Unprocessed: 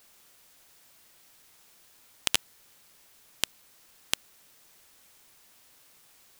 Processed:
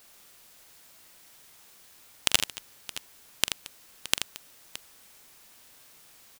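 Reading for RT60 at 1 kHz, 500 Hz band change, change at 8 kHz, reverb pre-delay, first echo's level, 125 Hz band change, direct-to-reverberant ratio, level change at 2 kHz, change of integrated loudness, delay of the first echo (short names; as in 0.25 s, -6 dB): none, +4.0 dB, +4.0 dB, none, -12.5 dB, +4.5 dB, none, +4.0 dB, +2.0 dB, 44 ms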